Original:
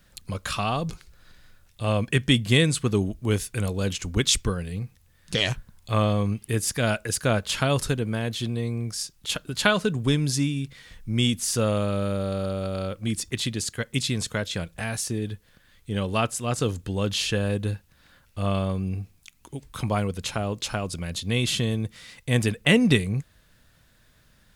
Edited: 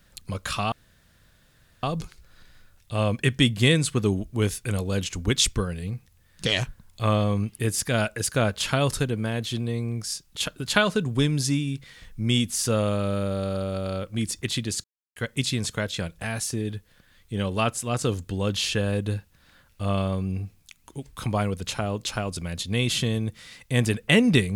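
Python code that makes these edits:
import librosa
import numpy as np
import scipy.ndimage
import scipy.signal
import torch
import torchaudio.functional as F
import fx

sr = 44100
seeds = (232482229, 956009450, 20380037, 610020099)

y = fx.edit(x, sr, fx.insert_room_tone(at_s=0.72, length_s=1.11),
    fx.insert_silence(at_s=13.73, length_s=0.32), tone=tone)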